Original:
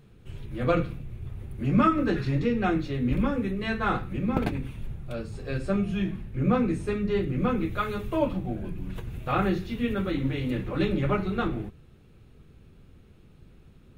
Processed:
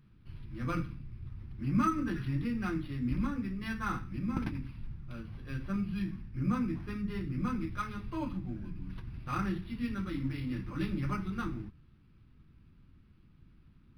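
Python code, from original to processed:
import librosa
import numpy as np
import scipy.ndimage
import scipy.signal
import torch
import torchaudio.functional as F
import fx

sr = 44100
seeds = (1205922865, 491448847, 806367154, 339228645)

y = fx.band_shelf(x, sr, hz=550.0, db=-13.5, octaves=1.2)
y = np.interp(np.arange(len(y)), np.arange(len(y))[::6], y[::6])
y = F.gain(torch.from_numpy(y), -6.5).numpy()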